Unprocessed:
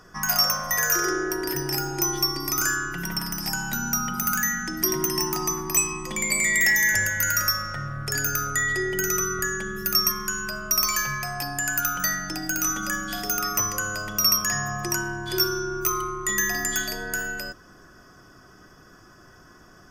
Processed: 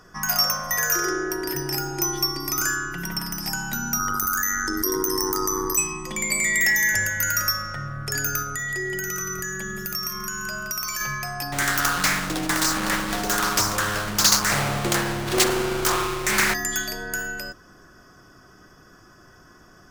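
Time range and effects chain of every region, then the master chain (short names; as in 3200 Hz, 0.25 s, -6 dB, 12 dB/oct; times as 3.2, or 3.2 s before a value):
3.99–5.78 fixed phaser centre 700 Hz, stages 6 + AM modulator 97 Hz, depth 45% + fast leveller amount 70%
8.42–11.01 compressor 3:1, threshold -27 dBFS + lo-fi delay 0.172 s, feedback 35%, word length 9-bit, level -8 dB
11.52–16.54 half-waves squared off + Doppler distortion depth 0.69 ms
whole clip: dry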